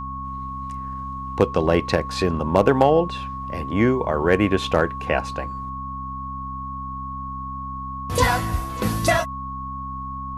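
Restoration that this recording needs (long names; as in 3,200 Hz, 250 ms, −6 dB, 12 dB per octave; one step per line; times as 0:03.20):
hum removal 65.9 Hz, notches 4
notch filter 1,100 Hz, Q 30
downward expander −23 dBFS, range −21 dB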